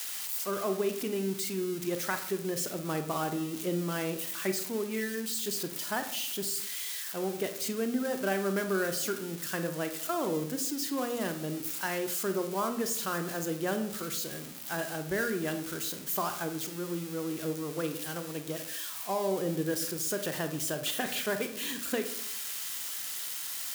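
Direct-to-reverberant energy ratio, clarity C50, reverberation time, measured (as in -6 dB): 7.5 dB, 10.5 dB, 0.75 s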